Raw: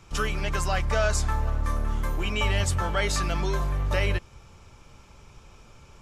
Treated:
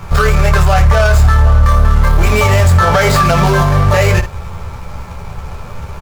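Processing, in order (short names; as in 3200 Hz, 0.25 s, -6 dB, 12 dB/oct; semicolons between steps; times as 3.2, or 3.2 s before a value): median filter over 15 samples; bell 300 Hz -13.5 dB 0.62 oct; on a send: early reflections 12 ms -3.5 dB, 28 ms -7.5 dB, 77 ms -15.5 dB; on the sum: maximiser +25 dB; gain -1 dB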